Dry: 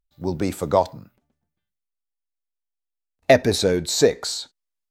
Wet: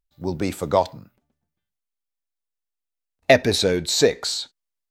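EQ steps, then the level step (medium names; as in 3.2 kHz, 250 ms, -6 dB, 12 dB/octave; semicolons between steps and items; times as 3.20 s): dynamic bell 2.9 kHz, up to +6 dB, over -40 dBFS, Q 0.95; -1.0 dB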